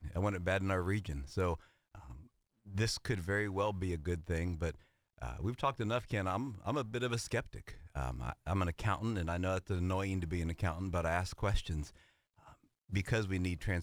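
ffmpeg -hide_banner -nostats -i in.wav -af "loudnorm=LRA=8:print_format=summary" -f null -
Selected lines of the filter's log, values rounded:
Input Integrated:    -36.9 LUFS
Input True Peak:     -18.5 dBTP
Input LRA:             1.4 LU
Input Threshold:     -47.7 LUFS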